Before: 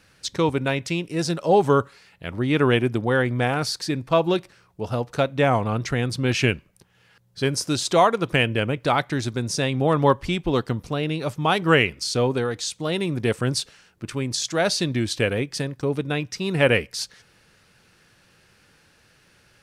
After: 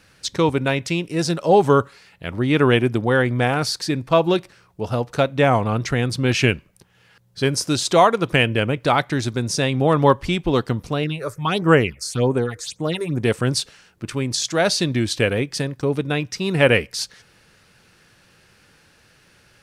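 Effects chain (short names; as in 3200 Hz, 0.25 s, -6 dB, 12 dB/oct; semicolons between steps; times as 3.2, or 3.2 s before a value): 11.03–13.22 phaser stages 6, 0.95 Hz -> 2.9 Hz, lowest notch 200–4800 Hz; gain +3 dB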